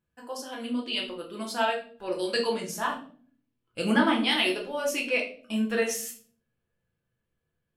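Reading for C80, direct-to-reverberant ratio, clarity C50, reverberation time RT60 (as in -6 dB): 14.0 dB, -1.5 dB, 8.5 dB, 0.50 s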